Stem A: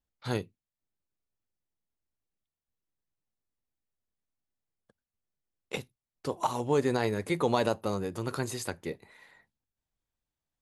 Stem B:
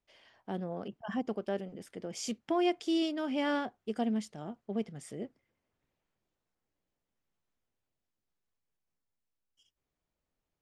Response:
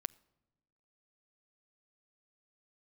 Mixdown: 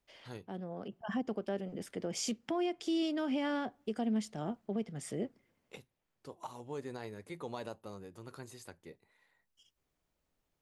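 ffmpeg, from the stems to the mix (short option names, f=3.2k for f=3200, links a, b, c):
-filter_complex "[0:a]volume=-15.5dB,asplit=2[a][b];[1:a]acrossover=split=330[c][d];[d]acompressor=threshold=-38dB:ratio=1.5[e];[c][e]amix=inputs=2:normalize=0,volume=2.5dB,asplit=2[f][g];[g]volume=-11.5dB[h];[b]apad=whole_len=468223[i];[f][i]sidechaincompress=threshold=-58dB:ratio=8:attack=35:release=911[j];[2:a]atrim=start_sample=2205[k];[h][k]afir=irnorm=-1:irlink=0[l];[a][j][l]amix=inputs=3:normalize=0,alimiter=level_in=2dB:limit=-24dB:level=0:latency=1:release=224,volume=-2dB"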